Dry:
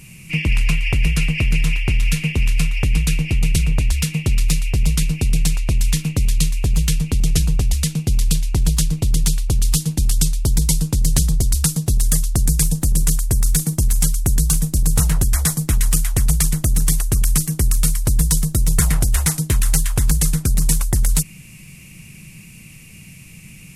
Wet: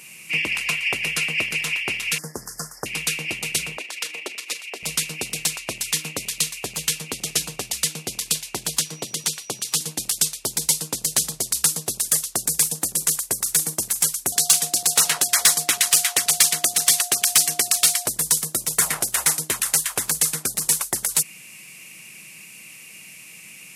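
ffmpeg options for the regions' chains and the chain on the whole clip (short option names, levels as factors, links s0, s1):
-filter_complex "[0:a]asettb=1/sr,asplit=3[s0][s1][s2];[s0]atrim=end=2.184[s3];[s1]atrim=start=2.18:end=2.86,asetpts=PTS-STARTPTS,afade=t=in:d=0.004:c=qsin,afade=t=out:st=0.676:d=0.004:c=qsin,acrossover=split=5900[s4][s5];[s5]acompressor=threshold=0.0126:ratio=4:attack=1:release=60[s6];[s4][s6]amix=inputs=2:normalize=0,asuperstop=centerf=2900:order=12:qfactor=0.89,highshelf=f=12000:g=9.5[s7];[s2]atrim=start=2.856[s8];[s3][s7]acrossfade=d=0.004:c1=hsin:c2=qsin[s9];[s9][s8]acrossfade=d=0.004:c1=qsin:c2=hsin,asettb=1/sr,asplit=3[s10][s11][s12];[s10]atrim=end=3.774[s13];[s11]atrim=start=3.77:end=4.83,asetpts=PTS-STARTPTS,afade=t=in:d=0.004:c=qsin,afade=t=out:st=1.056:d=0.004:c=qsin,highpass=f=300:w=0.5412,highpass=f=300:w=1.3066,highshelf=f=6200:g=-9.5,tremolo=f=24:d=0.462[s14];[s12]atrim=start=4.826[s15];[s13][s14]acrossfade=d=0.004:c1=hsin:c2=qsin[s16];[s16][s15]acrossfade=d=0.004:c1=qsin:c2=hsin,asettb=1/sr,asplit=3[s17][s18][s19];[s17]atrim=end=8.794[s20];[s18]atrim=start=8.79:end=9.81,asetpts=PTS-STARTPTS,afade=t=in:d=0.004:c=qsin,afade=t=out:st=1.016:d=0.004:c=qsin,highpass=f=110:w=0.5412,highpass=f=110:w=1.3066,highshelf=f=8500:g=-7,aeval=exprs='val(0)+0.00562*sin(2*PI*5800*n/s)':c=same[s21];[s19]atrim=start=9.806[s22];[s20][s21]acrossfade=d=0.004:c1=hsin:c2=qsin[s23];[s23][s22]acrossfade=d=0.004:c1=qsin:c2=hsin,asettb=1/sr,asplit=3[s24][s25][s26];[s24]atrim=end=14.324[s27];[s25]atrim=start=14.32:end=18.06,asetpts=PTS-STARTPTS,afade=t=in:d=0.004:c=qsin,afade=t=out:st=3.736:d=0.004:c=qsin,highpass=f=190:p=1,equalizer=f=3600:w=0.57:g=10.5,aeval=exprs='val(0)+0.0112*sin(2*PI*710*n/s)':c=same[s28];[s26]atrim=start=18.056[s29];[s27][s28]acrossfade=d=0.004:c1=hsin:c2=qsin[s30];[s30][s29]acrossfade=d=0.004:c1=qsin:c2=hsin,highpass=490,acontrast=73,volume=0.631"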